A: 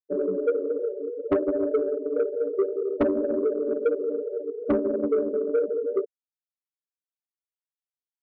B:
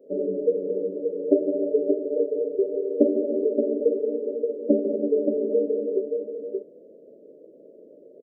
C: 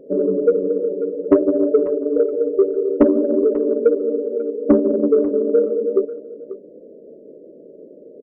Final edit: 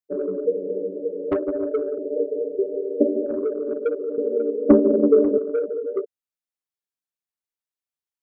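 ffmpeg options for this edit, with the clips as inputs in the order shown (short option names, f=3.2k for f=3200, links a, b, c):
-filter_complex "[1:a]asplit=2[a][b];[0:a]asplit=4[c][d][e][f];[c]atrim=end=0.452[g];[a]atrim=start=0.448:end=1.312[h];[d]atrim=start=1.308:end=1.982[i];[b]atrim=start=1.978:end=3.262[j];[e]atrim=start=3.258:end=4.182[k];[2:a]atrim=start=4.178:end=5.382[l];[f]atrim=start=5.378[m];[g][h]acrossfade=d=0.004:c1=hsin:c2=hsin[n];[n][i]acrossfade=d=0.004:c1=hsin:c2=hsin[o];[o][j]acrossfade=d=0.004:c1=hsin:c2=hsin[p];[p][k]acrossfade=d=0.004:c1=hsin:c2=hsin[q];[q][l]acrossfade=d=0.004:c1=hsin:c2=hsin[r];[r][m]acrossfade=d=0.004:c1=hsin:c2=hsin"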